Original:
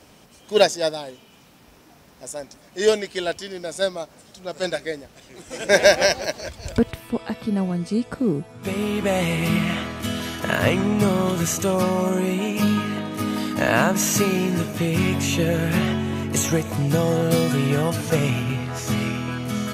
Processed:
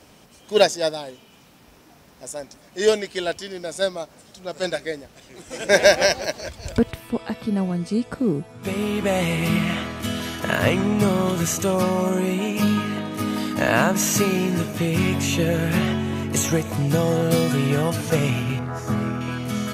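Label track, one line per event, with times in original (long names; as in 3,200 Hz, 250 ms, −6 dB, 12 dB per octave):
18.590000	19.210000	high shelf with overshoot 1,900 Hz −9 dB, Q 1.5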